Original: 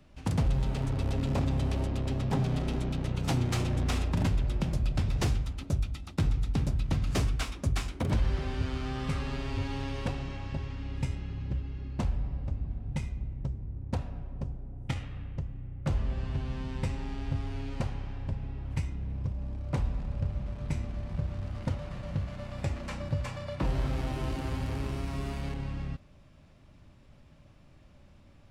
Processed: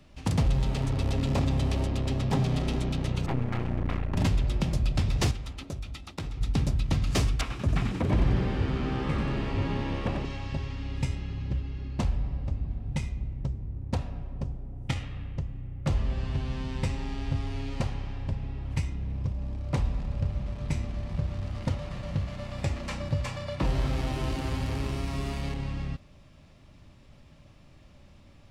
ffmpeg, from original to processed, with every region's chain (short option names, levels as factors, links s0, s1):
-filter_complex "[0:a]asettb=1/sr,asplit=3[s0][s1][s2];[s0]atrim=end=3.264[s3];[s1]atrim=start=3.26:end=4.17,asetpts=PTS-STARTPTS,afade=t=in:d=0.004:c=qsin,afade=t=out:st=0.906:d=0.004:c=qsin,lowpass=f=2200:w=0.5412,lowpass=f=2200:w=1.3066,aeval=exprs='clip(val(0),-1,0.00708)':c=same[s4];[s2]atrim=start=4.166[s5];[s3][s4]acrossfade=d=0.004:c1=hsin:c2=qsin[s6];[s6][s5]acrossfade=d=0.004:c1=qsin:c2=hsin,asettb=1/sr,asplit=3[s7][s8][s9];[s7]atrim=end=5.314[s10];[s8]atrim=start=5.31:end=6.41,asetpts=PTS-STARTPTS,afade=t=in:d=0.004:c=qsin,afade=t=out:st=1.096:d=0.004:c=qsin,bass=f=250:g=-6,treble=f=4000:g=-3,acompressor=threshold=0.02:ratio=4:attack=3.2:release=140:knee=1:detection=peak[s11];[s9]atrim=start=6.406[s12];[s10][s11]acrossfade=d=0.004:c1=hsin:c2=qsin[s13];[s13][s12]acrossfade=d=0.004:c1=qsin:c2=hsin,asettb=1/sr,asplit=3[s14][s15][s16];[s14]atrim=end=7.414[s17];[s15]atrim=start=7.41:end=10.25,asetpts=PTS-STARTPTS,afade=t=in:d=0.004:c=qsin,afade=t=out:st=2.836:d=0.004:c=qsin,asplit=9[s18][s19][s20][s21][s22][s23][s24][s25][s26];[s19]adelay=91,afreqshift=70,volume=0.473[s27];[s20]adelay=182,afreqshift=140,volume=0.275[s28];[s21]adelay=273,afreqshift=210,volume=0.158[s29];[s22]adelay=364,afreqshift=280,volume=0.0923[s30];[s23]adelay=455,afreqshift=350,volume=0.0537[s31];[s24]adelay=546,afreqshift=420,volume=0.0309[s32];[s25]adelay=637,afreqshift=490,volume=0.018[s33];[s26]adelay=728,afreqshift=560,volume=0.0105[s34];[s18][s27][s28][s29][s30][s31][s32][s33][s34]amix=inputs=9:normalize=0,atrim=end_sample=125244,acrossover=split=2700[s35][s36];[s36]acompressor=threshold=0.00126:ratio=4:attack=1:release=60[s37];[s35][s37]amix=inputs=2:normalize=0[s38];[s16]atrim=start=10.246[s39];[s17][s38]acrossfade=d=0.004:c1=hsin:c2=qsin[s40];[s40][s39]acrossfade=d=0.004:c1=qsin:c2=hsin,equalizer=f=4600:w=0.6:g=3.5,bandreject=f=1500:w=18,volume=1.33"